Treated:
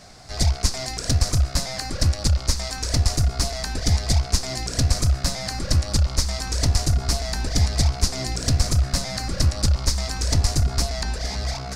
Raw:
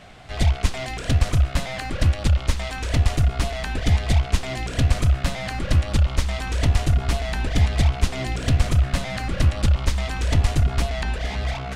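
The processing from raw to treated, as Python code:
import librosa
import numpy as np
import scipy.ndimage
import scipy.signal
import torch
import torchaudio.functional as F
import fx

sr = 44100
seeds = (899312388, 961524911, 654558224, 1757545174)

y = fx.high_shelf_res(x, sr, hz=3900.0, db=8.0, q=3.0)
y = F.gain(torch.from_numpy(y), -1.5).numpy()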